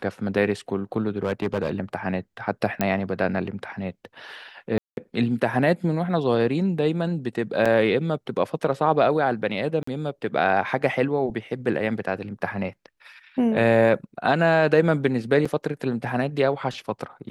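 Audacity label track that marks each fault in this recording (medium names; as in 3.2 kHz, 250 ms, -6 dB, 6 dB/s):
1.170000	1.710000	clipped -18.5 dBFS
2.810000	2.810000	pop -8 dBFS
4.780000	4.970000	dropout 191 ms
7.650000	7.660000	dropout 5.7 ms
9.830000	9.870000	dropout 44 ms
15.450000	15.460000	dropout 5.2 ms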